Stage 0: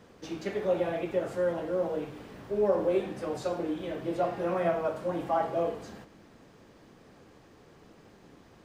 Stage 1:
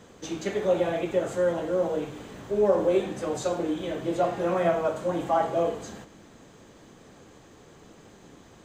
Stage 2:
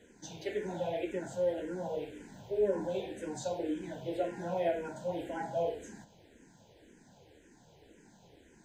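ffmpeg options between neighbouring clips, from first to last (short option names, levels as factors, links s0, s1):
-af "superequalizer=13b=1.41:15b=2.51,volume=1.58"
-filter_complex "[0:a]asuperstop=centerf=1200:order=8:qfactor=3.1,asplit=2[s0][s1];[s1]afreqshift=-1.9[s2];[s0][s2]amix=inputs=2:normalize=1,volume=0.531"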